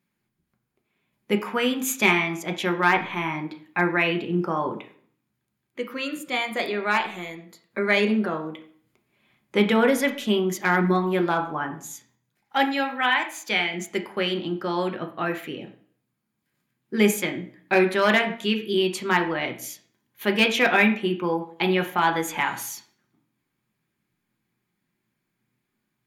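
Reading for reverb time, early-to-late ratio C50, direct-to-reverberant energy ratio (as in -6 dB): 0.50 s, 11.0 dB, 3.5 dB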